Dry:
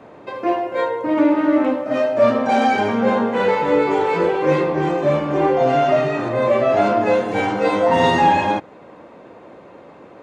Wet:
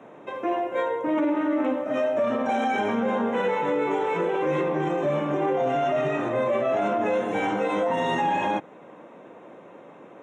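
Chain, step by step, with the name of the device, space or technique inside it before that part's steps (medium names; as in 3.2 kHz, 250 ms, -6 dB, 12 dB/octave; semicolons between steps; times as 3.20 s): PA system with an anti-feedback notch (high-pass 130 Hz 24 dB/octave; Butterworth band-stop 4.6 kHz, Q 2.7; peak limiter -12.5 dBFS, peak gain reduction 8.5 dB); trim -4 dB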